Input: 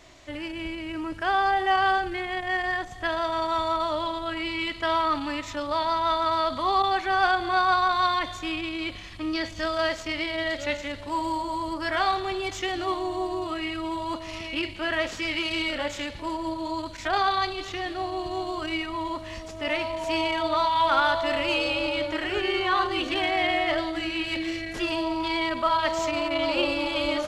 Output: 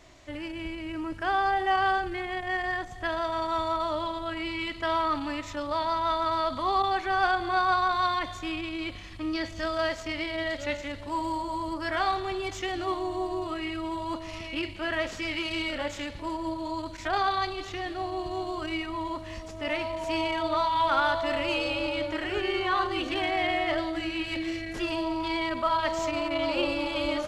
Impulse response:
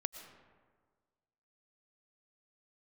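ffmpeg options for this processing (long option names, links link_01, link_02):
-filter_complex "[0:a]asplit=2[link_01][link_02];[1:a]atrim=start_sample=2205,lowpass=frequency=4000:width=0.5412,lowpass=frequency=4000:width=1.3066,lowshelf=frequency=350:gain=10[link_03];[link_02][link_03]afir=irnorm=-1:irlink=0,volume=-15dB[link_04];[link_01][link_04]amix=inputs=2:normalize=0,volume=-3.5dB"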